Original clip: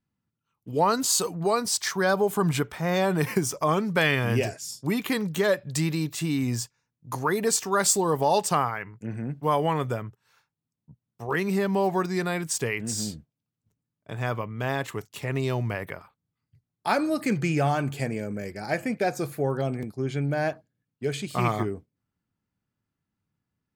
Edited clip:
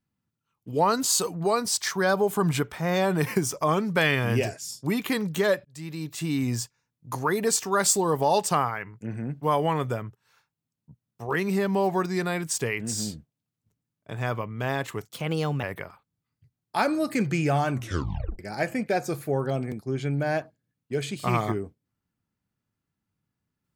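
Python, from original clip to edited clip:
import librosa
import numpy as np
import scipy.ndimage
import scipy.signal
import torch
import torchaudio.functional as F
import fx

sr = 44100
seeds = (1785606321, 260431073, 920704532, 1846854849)

y = fx.edit(x, sr, fx.fade_in_span(start_s=5.65, length_s=0.72),
    fx.speed_span(start_s=15.08, length_s=0.66, speed=1.2),
    fx.tape_stop(start_s=17.84, length_s=0.66), tone=tone)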